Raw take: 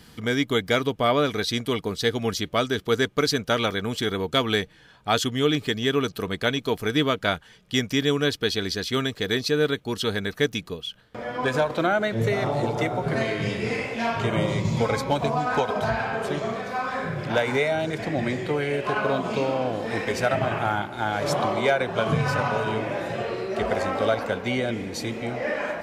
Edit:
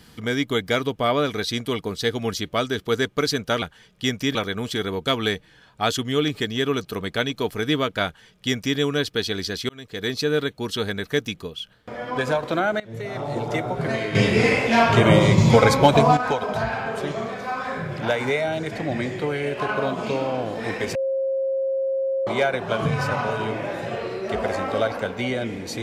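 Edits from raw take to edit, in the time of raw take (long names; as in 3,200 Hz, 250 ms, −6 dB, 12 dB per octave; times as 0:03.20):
0:07.32–0:08.05: duplicate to 0:03.62
0:08.96–0:09.42: fade in
0:12.07–0:12.81: fade in linear, from −18.5 dB
0:13.42–0:15.44: clip gain +9 dB
0:20.22–0:21.54: beep over 536 Hz −20.5 dBFS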